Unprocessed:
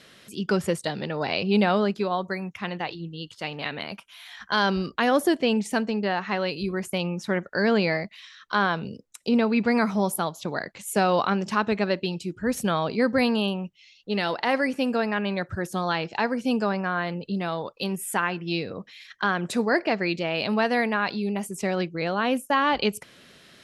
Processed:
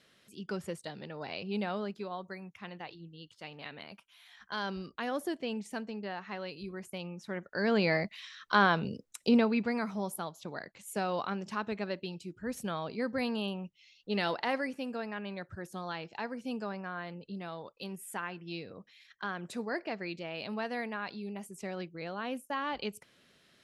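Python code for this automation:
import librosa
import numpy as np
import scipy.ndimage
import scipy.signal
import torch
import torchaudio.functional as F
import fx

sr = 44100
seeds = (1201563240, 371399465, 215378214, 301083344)

y = fx.gain(x, sr, db=fx.line((7.28, -13.5), (8.04, -1.5), (9.28, -1.5), (9.77, -11.5), (13.13, -11.5), (14.28, -5.0), (14.82, -13.0)))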